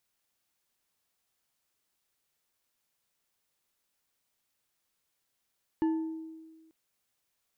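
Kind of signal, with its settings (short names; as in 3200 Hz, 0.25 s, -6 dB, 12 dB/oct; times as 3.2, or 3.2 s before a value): glass hit bar, lowest mode 321 Hz, decay 1.49 s, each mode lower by 12 dB, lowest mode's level -23 dB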